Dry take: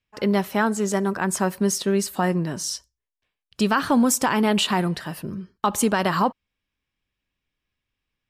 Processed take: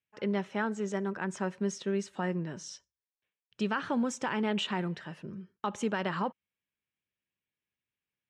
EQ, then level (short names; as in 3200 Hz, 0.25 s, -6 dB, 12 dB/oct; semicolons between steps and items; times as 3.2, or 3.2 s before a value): speaker cabinet 130–6000 Hz, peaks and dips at 270 Hz -5 dB, 710 Hz -5 dB, 1100 Hz -5 dB; bell 4600 Hz -11.5 dB 0.46 oct; -8.5 dB